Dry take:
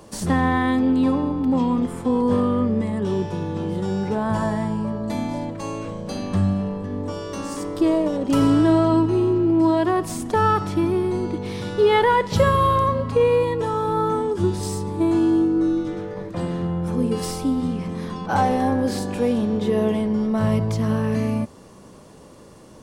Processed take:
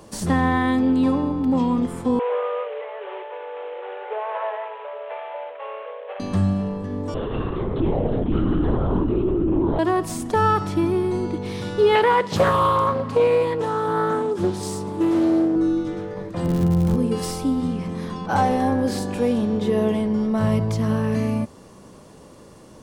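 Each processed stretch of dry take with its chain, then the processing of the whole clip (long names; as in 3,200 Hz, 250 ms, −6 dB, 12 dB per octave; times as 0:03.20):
0:02.19–0:06.20: variable-slope delta modulation 16 kbit/s + Butterworth high-pass 450 Hz 72 dB per octave + spectral tilt −2 dB per octave
0:07.14–0:09.79: low-shelf EQ 220 Hz +11.5 dB + downward compressor 4 to 1, threshold −18 dBFS + linear-prediction vocoder at 8 kHz whisper
0:11.95–0:15.56: high-pass filter 130 Hz + highs frequency-modulated by the lows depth 0.43 ms
0:16.44–0:16.95: spectral tilt −2.5 dB per octave + surface crackle 170 per second −25 dBFS
whole clip: no processing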